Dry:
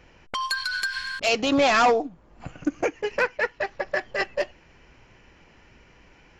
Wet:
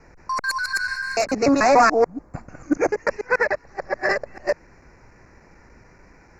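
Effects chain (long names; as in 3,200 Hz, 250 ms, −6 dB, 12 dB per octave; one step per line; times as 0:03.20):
reversed piece by piece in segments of 146 ms
Butterworth band-reject 3,200 Hz, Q 1.2
level +4.5 dB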